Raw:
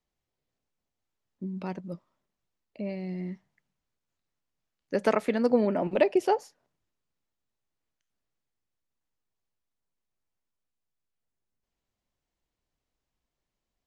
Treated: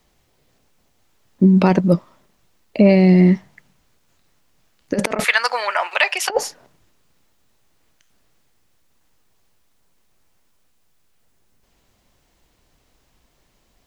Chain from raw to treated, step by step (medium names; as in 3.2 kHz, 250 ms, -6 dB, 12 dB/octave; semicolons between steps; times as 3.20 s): 5.24–6.30 s: high-pass 1.1 kHz 24 dB/octave; compressor with a negative ratio -32 dBFS, ratio -0.5; loudness maximiser +21.5 dB; trim -1 dB